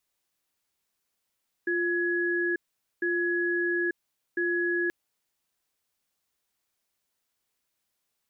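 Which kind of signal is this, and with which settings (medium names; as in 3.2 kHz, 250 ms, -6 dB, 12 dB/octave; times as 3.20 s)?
cadence 349 Hz, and 1.68 kHz, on 0.89 s, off 0.46 s, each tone -27 dBFS 3.23 s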